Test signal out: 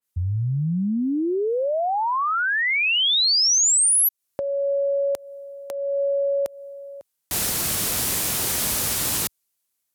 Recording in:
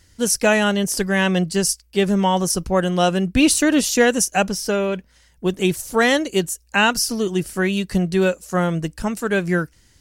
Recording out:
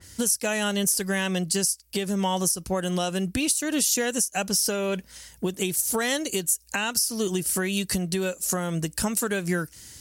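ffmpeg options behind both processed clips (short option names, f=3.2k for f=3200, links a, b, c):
-af "equalizer=f=12k:w=0.46:g=10.5,acompressor=threshold=-26dB:ratio=12,alimiter=limit=-20.5dB:level=0:latency=1:release=318,highpass=65,adynamicequalizer=threshold=0.00631:dfrequency=2800:dqfactor=0.7:tfrequency=2800:tqfactor=0.7:attack=5:release=100:ratio=0.375:range=2:mode=boostabove:tftype=highshelf,volume=5.5dB"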